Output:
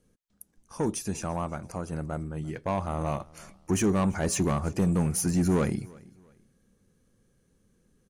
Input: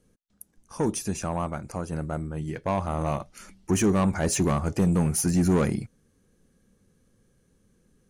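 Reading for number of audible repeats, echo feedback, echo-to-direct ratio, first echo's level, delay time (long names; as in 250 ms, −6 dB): 2, 33%, −23.5 dB, −24.0 dB, 339 ms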